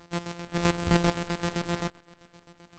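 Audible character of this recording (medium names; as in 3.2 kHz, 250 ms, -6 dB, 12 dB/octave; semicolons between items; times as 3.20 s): a buzz of ramps at a fixed pitch in blocks of 256 samples; chopped level 7.7 Hz, depth 60%, duty 45%; Opus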